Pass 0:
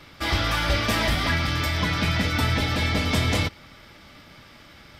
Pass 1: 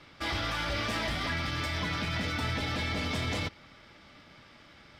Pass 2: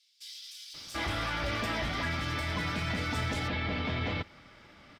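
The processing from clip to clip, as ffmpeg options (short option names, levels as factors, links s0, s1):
-af "lowshelf=f=100:g=-5.5,alimiter=limit=0.133:level=0:latency=1:release=30,adynamicsmooth=sensitivity=7:basefreq=8000,volume=0.531"
-filter_complex "[0:a]acrossover=split=4100[s0][s1];[s0]adelay=740[s2];[s2][s1]amix=inputs=2:normalize=0"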